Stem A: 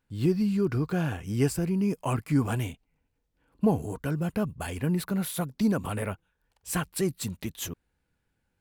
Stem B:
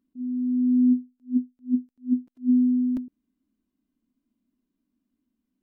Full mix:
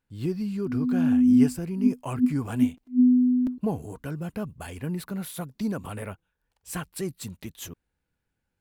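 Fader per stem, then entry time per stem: -4.0, +1.5 dB; 0.00, 0.50 s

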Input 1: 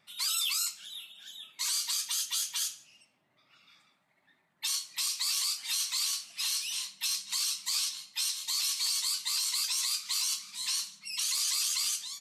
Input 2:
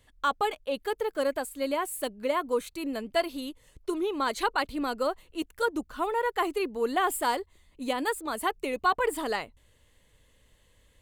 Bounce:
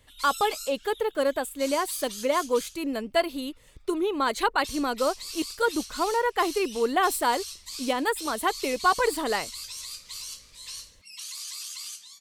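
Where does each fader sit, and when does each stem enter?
-7.5, +3.0 dB; 0.00, 0.00 s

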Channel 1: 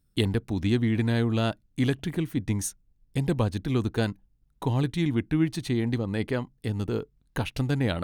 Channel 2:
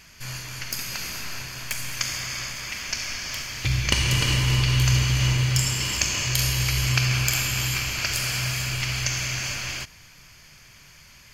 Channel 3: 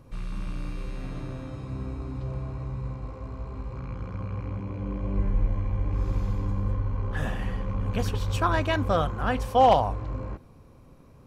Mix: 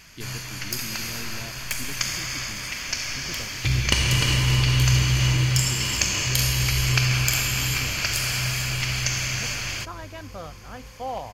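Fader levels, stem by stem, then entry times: -15.5, +1.0, -13.5 dB; 0.00, 0.00, 1.45 s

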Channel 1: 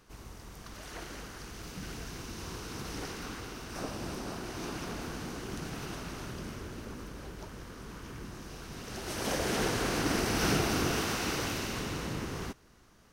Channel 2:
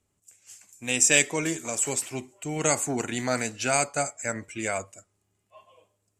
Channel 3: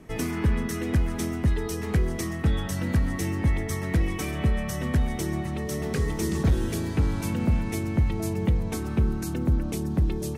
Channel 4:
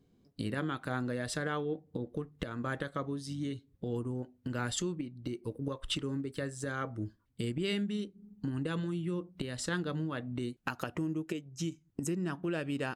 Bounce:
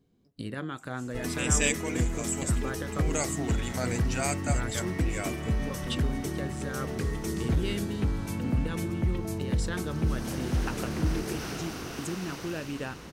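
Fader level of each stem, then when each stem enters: -8.0, -7.0, -5.0, -1.0 dB; 1.00, 0.50, 1.05, 0.00 s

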